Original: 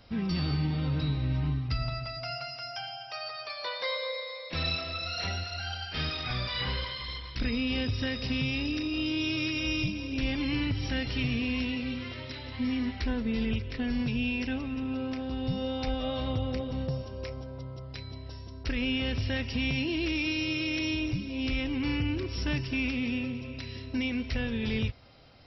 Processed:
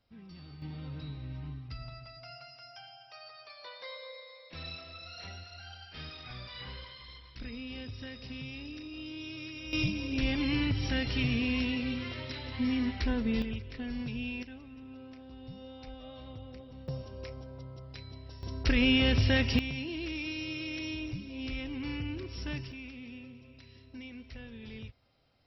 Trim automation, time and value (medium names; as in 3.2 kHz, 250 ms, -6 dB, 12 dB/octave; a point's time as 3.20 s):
-20 dB
from 0.62 s -12 dB
from 9.73 s 0 dB
from 13.42 s -7 dB
from 14.43 s -15 dB
from 16.88 s -5 dB
from 18.43 s +5 dB
from 19.59 s -7 dB
from 22.72 s -15 dB